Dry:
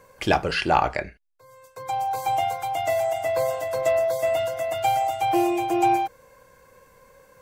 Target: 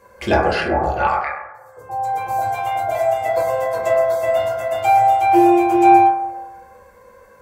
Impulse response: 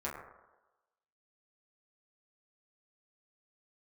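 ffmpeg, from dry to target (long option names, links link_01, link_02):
-filter_complex "[0:a]asettb=1/sr,asplit=3[link_01][link_02][link_03];[link_01]atrim=end=0.684[link_04];[link_02]atrim=start=0.68:end=2.95,asetpts=PTS-STARTPTS,afade=type=in:duration=0.004:curve=qsin,afade=type=out:start_time=2.266:duration=0.004:curve=qsin,acrossover=split=790|4300[link_05][link_06][link_07];[link_07]adelay=150[link_08];[link_06]adelay=280[link_09];[link_05][link_09][link_08]amix=inputs=3:normalize=0,atrim=end_sample=100107[link_10];[link_03]atrim=start=2.946[link_11];[link_04][link_10]acrossfade=duration=0.004:curve1=hsin:curve2=qsin[link_12];[link_12][link_11]acrossfade=duration=0.004:curve1=qsin:curve2=hsin[link_13];[1:a]atrim=start_sample=2205[link_14];[link_13][link_14]afir=irnorm=-1:irlink=0,volume=2.5dB"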